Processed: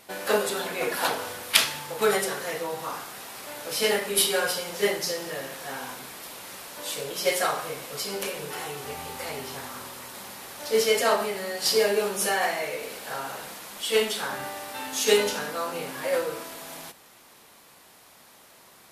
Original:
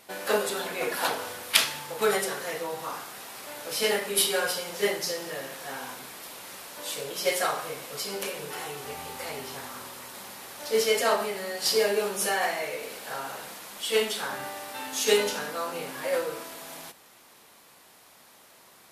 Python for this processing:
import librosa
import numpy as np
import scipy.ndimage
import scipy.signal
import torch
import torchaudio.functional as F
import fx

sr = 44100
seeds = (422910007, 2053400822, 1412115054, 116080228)

y = fx.low_shelf(x, sr, hz=140.0, db=4.0)
y = y * 10.0 ** (1.5 / 20.0)